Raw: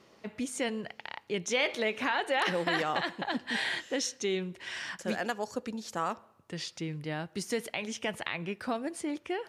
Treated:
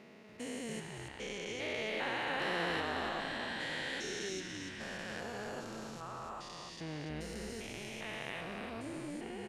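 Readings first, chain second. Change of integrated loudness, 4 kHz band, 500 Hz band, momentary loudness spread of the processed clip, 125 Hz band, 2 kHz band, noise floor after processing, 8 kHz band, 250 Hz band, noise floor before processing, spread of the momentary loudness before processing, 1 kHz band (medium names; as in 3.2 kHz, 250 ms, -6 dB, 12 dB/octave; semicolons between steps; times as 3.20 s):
-6.5 dB, -6.0 dB, -7.5 dB, 10 LU, -5.0 dB, -5.5 dB, -50 dBFS, -8.0 dB, -7.5 dB, -61 dBFS, 10 LU, -7.0 dB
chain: spectrogram pixelated in time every 400 ms; bass shelf 110 Hz -11 dB; frequency-shifting echo 286 ms, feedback 33%, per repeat -92 Hz, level -5.5 dB; trim -2.5 dB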